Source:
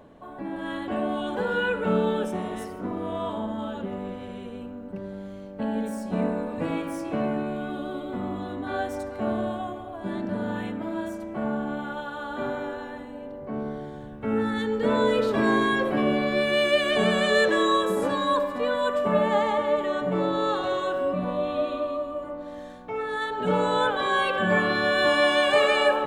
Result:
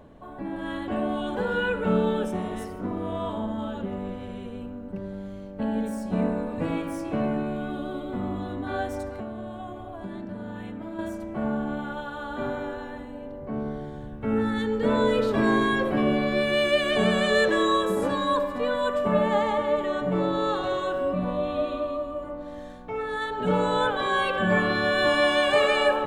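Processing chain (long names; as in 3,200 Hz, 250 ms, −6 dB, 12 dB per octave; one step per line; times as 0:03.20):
low-shelf EQ 110 Hz +10.5 dB
0:09.14–0:10.99: downward compressor 6 to 1, threshold −32 dBFS, peak gain reduction 10.5 dB
level −1 dB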